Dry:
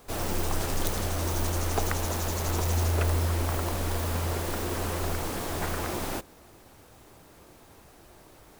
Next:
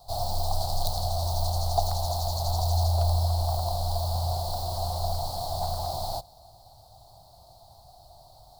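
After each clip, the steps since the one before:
drawn EQ curve 130 Hz 0 dB, 260 Hz −21 dB, 450 Hz −20 dB, 710 Hz +9 dB, 1,700 Hz −29 dB, 2,600 Hz −27 dB, 4,300 Hz +9 dB, 6,100 Hz −7 dB, 12,000 Hz −5 dB
level +2 dB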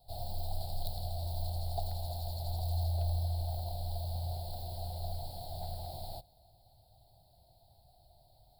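phaser with its sweep stopped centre 2,700 Hz, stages 4
level −8 dB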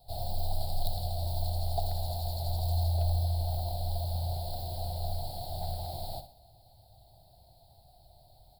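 repeating echo 62 ms, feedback 37%, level −10.5 dB
level +4.5 dB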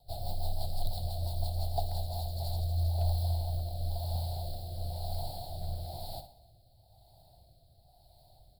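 rotating-speaker cabinet horn 6 Hz, later 1 Hz, at 0:01.81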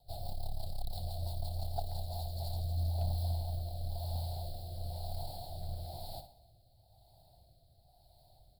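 saturating transformer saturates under 69 Hz
level −3 dB

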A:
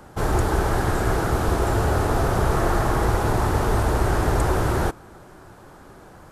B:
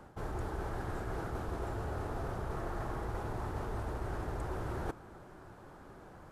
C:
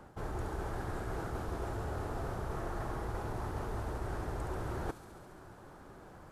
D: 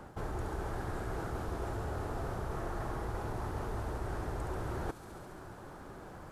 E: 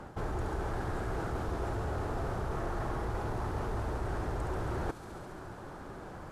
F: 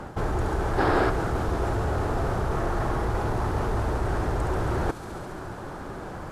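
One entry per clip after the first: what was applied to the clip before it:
high-shelf EQ 3,800 Hz −8 dB; reversed playback; downward compressor 6 to 1, threshold −28 dBFS, peak gain reduction 12 dB; reversed playback; level −7 dB
delay with a high-pass on its return 69 ms, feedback 81%, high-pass 4,300 Hz, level −5.5 dB
downward compressor 1.5 to 1, threshold −45 dBFS, peak gain reduction 5 dB; level +4.5 dB
high-shelf EQ 12,000 Hz −11.5 dB; in parallel at −6.5 dB: gain into a clipping stage and back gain 34.5 dB
gain on a spectral selection 0:00.78–0:01.10, 250–5,500 Hz +8 dB; level +8.5 dB

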